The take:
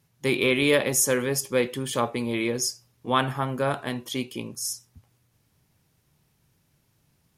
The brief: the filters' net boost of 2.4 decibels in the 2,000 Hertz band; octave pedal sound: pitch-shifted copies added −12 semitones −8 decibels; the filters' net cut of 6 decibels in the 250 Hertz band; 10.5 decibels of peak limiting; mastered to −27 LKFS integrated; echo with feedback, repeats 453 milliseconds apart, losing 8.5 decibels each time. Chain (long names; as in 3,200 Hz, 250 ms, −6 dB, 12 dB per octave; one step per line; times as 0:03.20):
parametric band 250 Hz −7.5 dB
parametric band 2,000 Hz +3 dB
brickwall limiter −18 dBFS
repeating echo 453 ms, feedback 38%, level −8.5 dB
pitch-shifted copies added −12 semitones −8 dB
level +2 dB